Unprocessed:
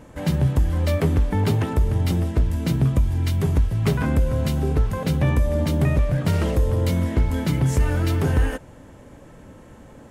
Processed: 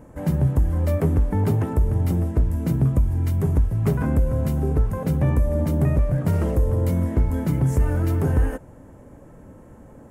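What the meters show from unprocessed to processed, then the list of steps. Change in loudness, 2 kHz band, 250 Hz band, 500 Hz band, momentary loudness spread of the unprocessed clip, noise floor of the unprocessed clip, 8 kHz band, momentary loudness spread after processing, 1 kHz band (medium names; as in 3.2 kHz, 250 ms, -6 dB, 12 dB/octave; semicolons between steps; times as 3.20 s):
0.0 dB, -6.5 dB, 0.0 dB, -1.0 dB, 2 LU, -46 dBFS, -5.5 dB, 2 LU, -2.5 dB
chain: peaking EQ 3.7 kHz -15 dB 1.8 oct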